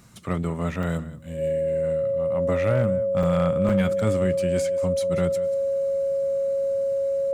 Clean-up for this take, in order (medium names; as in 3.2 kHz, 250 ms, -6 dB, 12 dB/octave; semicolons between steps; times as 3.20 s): clip repair -13.5 dBFS; band-stop 550 Hz, Q 30; interpolate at 0.83/3.23/3.69 s, 3.3 ms; inverse comb 185 ms -16.5 dB